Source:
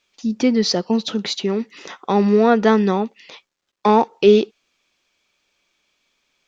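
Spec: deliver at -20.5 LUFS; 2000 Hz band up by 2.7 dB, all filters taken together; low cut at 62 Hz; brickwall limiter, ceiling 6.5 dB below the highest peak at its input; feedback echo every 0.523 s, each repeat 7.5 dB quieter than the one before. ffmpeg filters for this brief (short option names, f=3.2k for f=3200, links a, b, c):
-af "highpass=62,equalizer=f=2k:t=o:g=3.5,alimiter=limit=-7.5dB:level=0:latency=1,aecho=1:1:523|1046|1569|2092|2615:0.422|0.177|0.0744|0.0312|0.0131,volume=-0.5dB"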